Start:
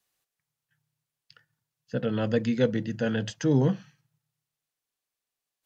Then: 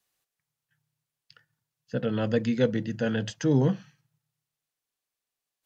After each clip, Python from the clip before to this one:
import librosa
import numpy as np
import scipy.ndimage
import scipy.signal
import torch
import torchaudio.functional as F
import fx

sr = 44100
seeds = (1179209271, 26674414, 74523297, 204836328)

y = x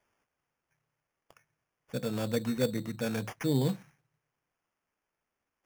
y = fx.high_shelf(x, sr, hz=6900.0, db=11.0)
y = fx.sample_hold(y, sr, seeds[0], rate_hz=4000.0, jitter_pct=0)
y = y * librosa.db_to_amplitude(-5.5)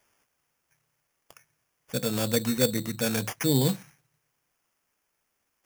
y = fx.high_shelf(x, sr, hz=3600.0, db=11.5)
y = y * librosa.db_to_amplitude(4.0)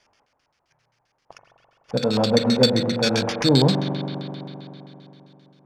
y = fx.rev_spring(x, sr, rt60_s=3.4, pass_ms=(42,), chirp_ms=40, drr_db=4.5)
y = fx.filter_lfo_lowpass(y, sr, shape='square', hz=7.6, low_hz=860.0, high_hz=4600.0, q=2.8)
y = y * librosa.db_to_amplitude(5.5)